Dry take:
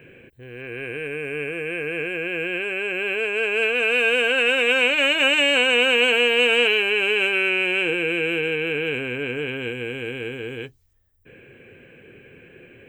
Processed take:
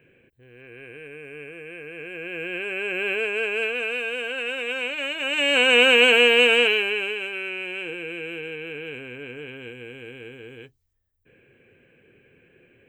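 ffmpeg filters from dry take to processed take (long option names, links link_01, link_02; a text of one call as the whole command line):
ffmpeg -i in.wav -af "volume=11.5dB,afade=type=in:start_time=1.96:duration=1.13:silence=0.298538,afade=type=out:start_time=3.09:duration=0.97:silence=0.354813,afade=type=in:start_time=5.25:duration=0.53:silence=0.251189,afade=type=out:start_time=6.29:duration=0.91:silence=0.237137" out.wav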